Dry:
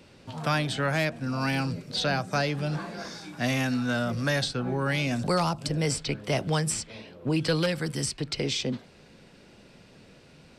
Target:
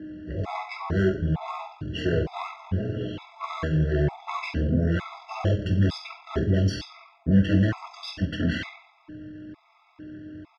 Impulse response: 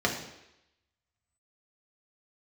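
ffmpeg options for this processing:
-filter_complex "[0:a]highshelf=frequency=3000:gain=-3.5,aeval=exprs='val(0)+0.0112*sin(2*PI*500*n/s)':channel_layout=same,aeval=exprs='(tanh(22.4*val(0)+0.55)-tanh(0.55))/22.4':channel_layout=same[link_01];[1:a]atrim=start_sample=2205,asetrate=66150,aresample=44100[link_02];[link_01][link_02]afir=irnorm=-1:irlink=0,asetrate=26990,aresample=44100,atempo=1.63392,afftfilt=real='re*gt(sin(2*PI*1.1*pts/sr)*(1-2*mod(floor(b*sr/1024/670),2)),0)':imag='im*gt(sin(2*PI*1.1*pts/sr)*(1-2*mod(floor(b*sr/1024/670),2)),0)':win_size=1024:overlap=0.75"

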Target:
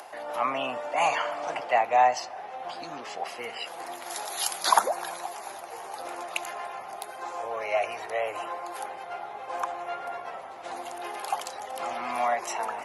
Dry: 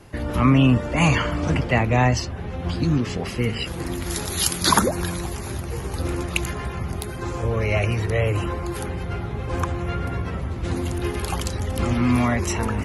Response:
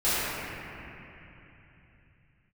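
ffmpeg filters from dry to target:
-filter_complex "[0:a]acompressor=mode=upward:threshold=-29dB:ratio=2.5,highpass=frequency=730:width_type=q:width=4.3,asplit=2[link_01][link_02];[1:a]atrim=start_sample=2205[link_03];[link_02][link_03]afir=irnorm=-1:irlink=0,volume=-36dB[link_04];[link_01][link_04]amix=inputs=2:normalize=0,volume=-7.5dB"

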